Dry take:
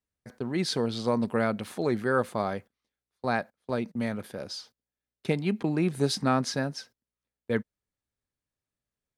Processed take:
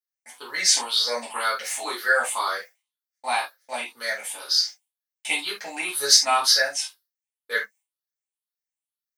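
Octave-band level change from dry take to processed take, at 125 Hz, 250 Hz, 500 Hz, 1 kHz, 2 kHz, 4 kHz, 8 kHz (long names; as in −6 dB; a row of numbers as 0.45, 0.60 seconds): below −25 dB, −17.5 dB, −3.0 dB, +6.5 dB, +11.0 dB, +16.0 dB, +19.0 dB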